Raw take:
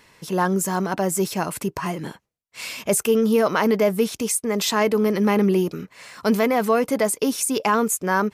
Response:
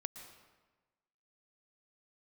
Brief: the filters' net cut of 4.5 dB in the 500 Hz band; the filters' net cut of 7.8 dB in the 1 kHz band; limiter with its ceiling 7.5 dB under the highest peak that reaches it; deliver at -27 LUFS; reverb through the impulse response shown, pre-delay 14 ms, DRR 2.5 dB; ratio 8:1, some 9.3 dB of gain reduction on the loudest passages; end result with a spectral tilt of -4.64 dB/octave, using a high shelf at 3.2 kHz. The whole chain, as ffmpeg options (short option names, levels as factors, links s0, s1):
-filter_complex "[0:a]equalizer=f=500:t=o:g=-3.5,equalizer=f=1000:t=o:g=-8,highshelf=f=3200:g=-8,acompressor=threshold=0.0501:ratio=8,alimiter=limit=0.0668:level=0:latency=1,asplit=2[s0][s1];[1:a]atrim=start_sample=2205,adelay=14[s2];[s1][s2]afir=irnorm=-1:irlink=0,volume=0.944[s3];[s0][s3]amix=inputs=2:normalize=0,volume=1.58"